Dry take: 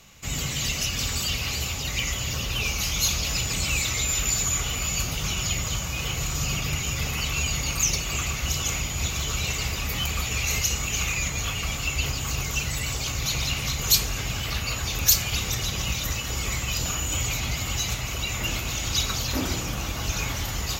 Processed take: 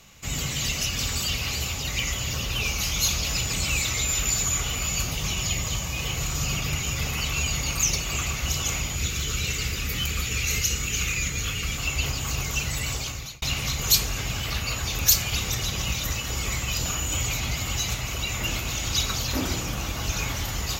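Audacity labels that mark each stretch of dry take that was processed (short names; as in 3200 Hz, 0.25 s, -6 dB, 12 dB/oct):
5.120000	6.130000	notch 1400 Hz, Q 7.3
8.960000	11.780000	band shelf 810 Hz -8.5 dB 1.1 oct
12.940000	13.420000	fade out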